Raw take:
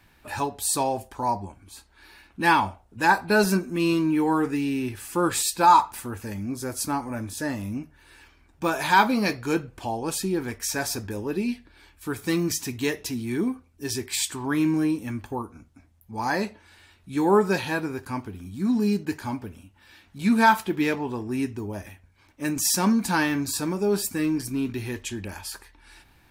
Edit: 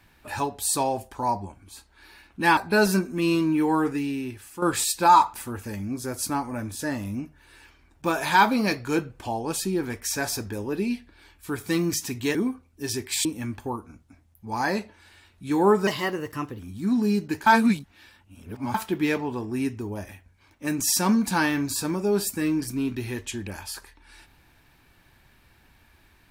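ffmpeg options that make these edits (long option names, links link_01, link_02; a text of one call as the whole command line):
ffmpeg -i in.wav -filter_complex "[0:a]asplit=9[link_01][link_02][link_03][link_04][link_05][link_06][link_07][link_08][link_09];[link_01]atrim=end=2.572[link_10];[link_02]atrim=start=3.148:end=5.2,asetpts=PTS-STARTPTS,afade=type=out:start_time=1.252:duration=0.8:silence=0.298538[link_11];[link_03]atrim=start=5.2:end=12.932,asetpts=PTS-STARTPTS,afade=type=in:duration=0.004:curve=hsin:silence=0.298538[link_12];[link_04]atrim=start=13.358:end=14.262[link_13];[link_05]atrim=start=14.908:end=17.534[link_14];[link_06]atrim=start=17.53:end=18.37,asetpts=PTS-STARTPTS,asetrate=51156,aresample=44100,atrim=end_sample=31934,asetpts=PTS-STARTPTS[link_15];[link_07]atrim=start=18.366:end=19.242[link_16];[link_08]atrim=start=19.238:end=20.522,asetpts=PTS-STARTPTS,areverse[link_17];[link_09]atrim=start=20.518[link_18];[link_11][link_12]concat=n=2:v=0:a=1[link_19];[link_10][link_19]acrossfade=duration=0.004:curve1=hsin:curve2=hsin[link_20];[link_20][link_13]acrossfade=duration=0.004:curve1=hsin:curve2=hsin[link_21];[link_21][link_14]acrossfade=duration=0.004:curve1=hsin:curve2=hsin[link_22];[link_22][link_15]acrossfade=duration=0.004:curve1=hsin:curve2=hsin[link_23];[link_23][link_16]acrossfade=duration=0.004:curve1=hsin:curve2=hsin[link_24];[link_24][link_17]acrossfade=duration=0.004:curve1=hsin:curve2=hsin[link_25];[link_25][link_18]acrossfade=duration=0.004:curve1=hsin:curve2=hsin" out.wav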